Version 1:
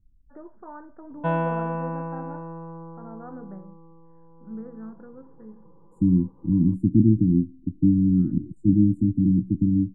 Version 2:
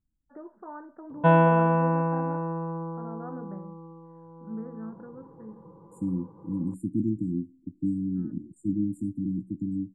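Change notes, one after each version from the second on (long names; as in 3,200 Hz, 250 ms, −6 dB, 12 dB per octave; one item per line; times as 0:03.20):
second voice: add spectral tilt +4.5 dB per octave
background +6.0 dB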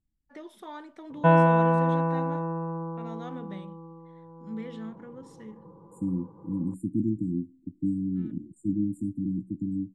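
first voice: remove Butterworth low-pass 1,600 Hz 72 dB per octave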